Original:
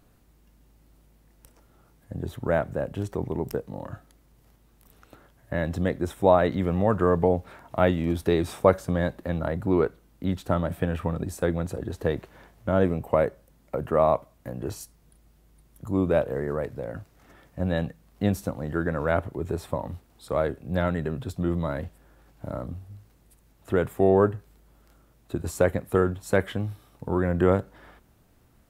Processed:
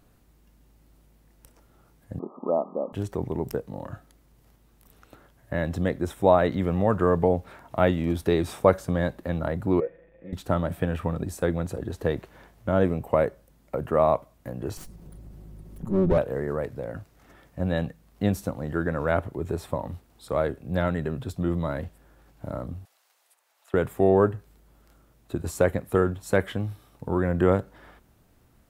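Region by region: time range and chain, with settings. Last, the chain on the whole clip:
2.19–2.93 s: zero-crossing glitches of -17.5 dBFS + brick-wall FIR band-pass 180–1300 Hz
9.80–10.33 s: jump at every zero crossing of -36.5 dBFS + cascade formant filter e + comb 6 ms, depth 66%
14.77–16.18 s: comb filter that takes the minimum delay 5.4 ms + tilt shelf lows +8 dB, about 660 Hz + upward compressor, threshold -33 dBFS
22.85–23.74 s: high-pass 660 Hz 24 dB/octave + treble shelf 10 kHz -5.5 dB + three bands compressed up and down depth 70%
whole clip: none

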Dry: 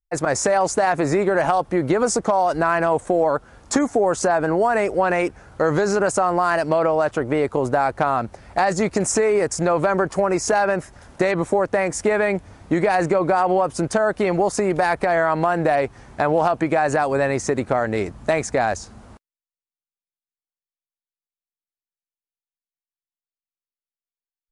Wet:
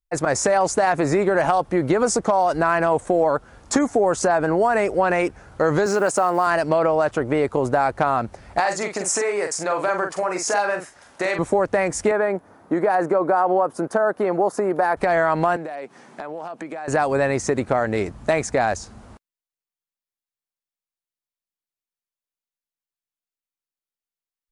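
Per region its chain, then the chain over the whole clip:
5.86–6.47 s: block-companded coder 7-bit + high-pass 200 Hz
8.60–11.39 s: high-pass 770 Hz 6 dB/octave + doubling 44 ms -6 dB
12.11–14.97 s: high-pass 250 Hz + high-order bell 4.3 kHz -11.5 dB 2.4 oct
15.56–16.88 s: steep high-pass 170 Hz + compression 4:1, threshold -31 dBFS
whole clip: none

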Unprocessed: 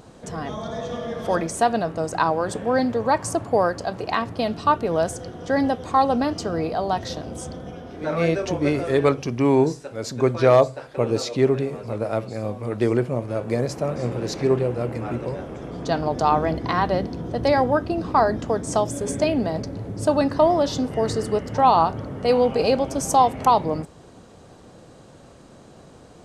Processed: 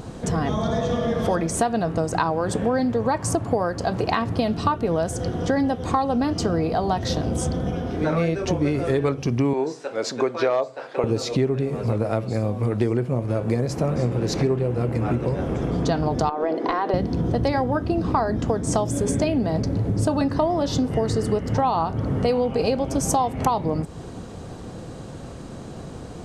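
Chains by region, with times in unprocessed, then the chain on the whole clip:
9.53–11.04 s: high-pass 440 Hz + distance through air 67 m
16.29–16.94 s: high-pass 370 Hz 24 dB/octave + compression 5:1, threshold -22 dBFS + tilt EQ -3 dB/octave
whole clip: bass shelf 260 Hz +7.5 dB; band-stop 590 Hz, Q 19; compression, threshold -26 dBFS; trim +7 dB

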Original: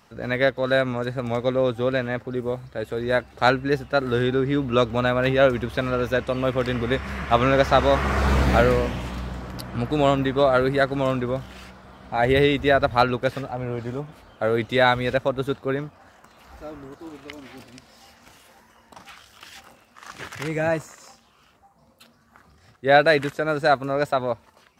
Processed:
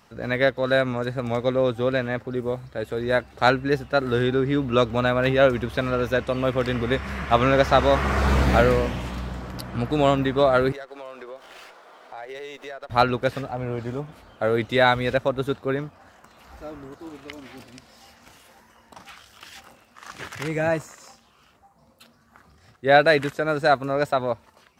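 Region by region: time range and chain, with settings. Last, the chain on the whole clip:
10.72–12.90 s: high-pass 380 Hz 24 dB/octave + compression 4:1, threshold -37 dBFS + sliding maximum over 3 samples
whole clip: none

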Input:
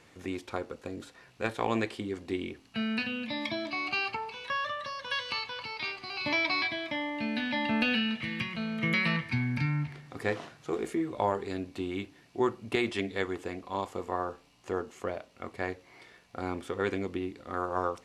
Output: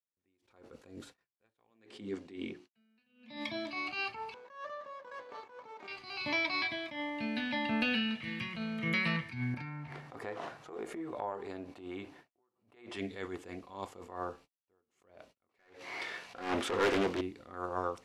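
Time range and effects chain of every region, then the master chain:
1.70–3.37 s: hum notches 60/120/180/240/300/360/420 Hz + dynamic bell 200 Hz, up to +4 dB, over -41 dBFS, Q 0.74 + band-pass 130–7900 Hz
4.34–5.88 s: median filter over 15 samples + band-pass 480–4400 Hz + tilt shelf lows +8.5 dB, about 830 Hz
9.54–12.97 s: compression, threshold -40 dBFS + peaking EQ 800 Hz +12 dB 2.6 oct
15.49–17.21 s: overdrive pedal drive 25 dB, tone 4.5 kHz, clips at -16 dBFS + loudspeaker Doppler distortion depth 0.4 ms
whole clip: gate -50 dBFS, range -47 dB; attacks held to a fixed rise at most 110 dB/s; trim -3.5 dB

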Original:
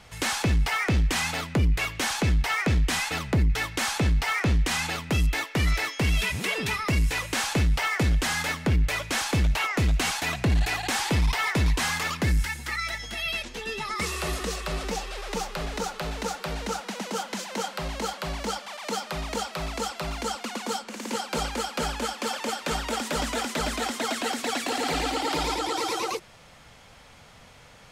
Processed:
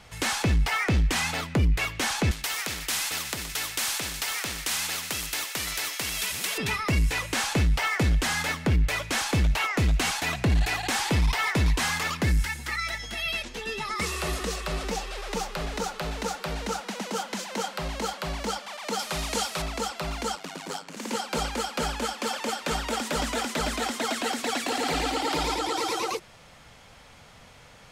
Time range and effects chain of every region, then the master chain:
2.31–6.58 s: tilt shelf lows -8.5 dB, about 1.2 kHz + thinning echo 122 ms, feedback 83%, high-pass 760 Hz, level -16 dB + spectrum-flattening compressor 2:1
18.99–19.62 s: one-bit delta coder 64 kbps, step -40 dBFS + treble shelf 3.3 kHz +10.5 dB
20.35–20.97 s: ring modulator 49 Hz + transformer saturation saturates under 1.1 kHz
whole clip: none

